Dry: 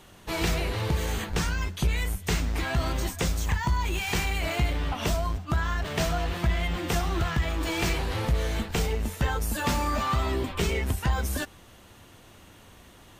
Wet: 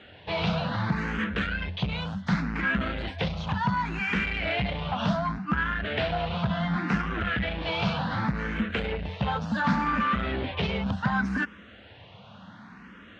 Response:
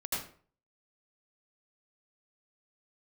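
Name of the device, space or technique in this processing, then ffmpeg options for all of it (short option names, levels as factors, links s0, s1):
barber-pole phaser into a guitar amplifier: -filter_complex "[0:a]asplit=2[s0][s1];[s1]afreqshift=0.68[s2];[s0][s2]amix=inputs=2:normalize=1,asoftclip=type=tanh:threshold=0.0447,highpass=97,equalizer=f=200:t=q:w=4:g=10,equalizer=f=360:t=q:w=4:g=-9,equalizer=f=1500:t=q:w=4:g=6,lowpass=f=3700:w=0.5412,lowpass=f=3700:w=1.3066,volume=2.11"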